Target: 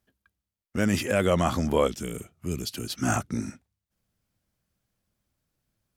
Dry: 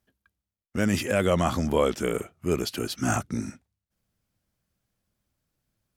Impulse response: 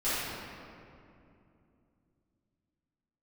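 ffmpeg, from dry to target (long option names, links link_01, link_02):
-filter_complex "[0:a]asettb=1/sr,asplit=3[link_01][link_02][link_03];[link_01]atrim=end=1.874[link_04];[link_02]atrim=start=1.87:end=2.9,asetpts=PTS-STARTPTS,afade=type=in:duration=0.004:curve=qsin,afade=type=out:start_time=1.026:duration=0.004:curve=qsin,acrossover=split=250|3000[link_05][link_06][link_07];[link_06]acompressor=threshold=-42dB:ratio=4[link_08];[link_05][link_08][link_07]amix=inputs=3:normalize=0[link_09];[link_03]atrim=start=2.896[link_10];[link_04][link_09]acrossfade=duration=0.004:curve1=hsin:curve2=qsin[link_11];[link_11][link_10]acrossfade=duration=0.004:curve1=qsin:curve2=hsin"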